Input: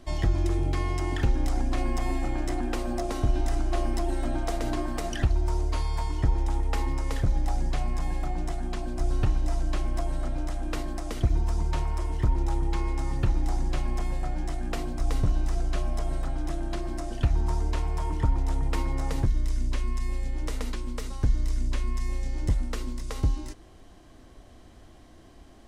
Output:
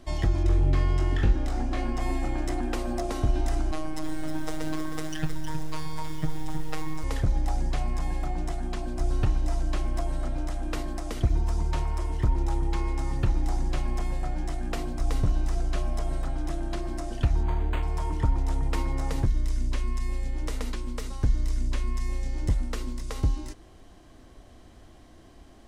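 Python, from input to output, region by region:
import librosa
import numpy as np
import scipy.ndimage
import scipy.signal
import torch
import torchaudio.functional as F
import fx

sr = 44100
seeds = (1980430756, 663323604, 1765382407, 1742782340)

y = fx.chain(x, sr, fx.high_shelf(hz=6100.0, db=-11.0),
    fx.notch(hz=1000.0, q=17.0),
    fx.room_flutter(wall_m=3.7, rt60_s=0.25), at=(0.43, 2.0))
y = fx.chain(y, sr, fx.robotise(hz=156.0),
    fx.echo_crushed(ms=315, feedback_pct=35, bits=7, wet_db=-8.0), at=(3.71, 7.04))
y = fx.chain(y, sr, fx.peak_eq(hz=3400.0, db=10.5, octaves=0.94),
    fx.resample_linear(factor=8), at=(17.43, 17.83))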